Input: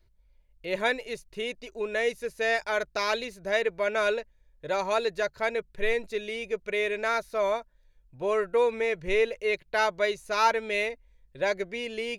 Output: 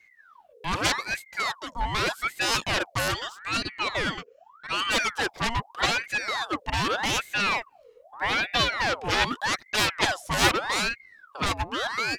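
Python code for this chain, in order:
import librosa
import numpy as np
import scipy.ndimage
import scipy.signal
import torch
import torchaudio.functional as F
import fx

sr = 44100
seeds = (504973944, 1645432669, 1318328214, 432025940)

y = fx.fixed_phaser(x, sr, hz=2300.0, stages=8, at=(3.08, 4.9))
y = fx.cheby_harmonics(y, sr, harmonics=(7,), levels_db=(-7,), full_scale_db=-10.0)
y = fx.ring_lfo(y, sr, carrier_hz=1300.0, swing_pct=65, hz=0.82)
y = y * librosa.db_to_amplitude(3.0)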